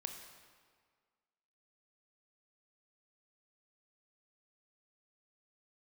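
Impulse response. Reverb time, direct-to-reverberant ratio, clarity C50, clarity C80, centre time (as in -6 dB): 1.8 s, 4.5 dB, 6.0 dB, 7.5 dB, 38 ms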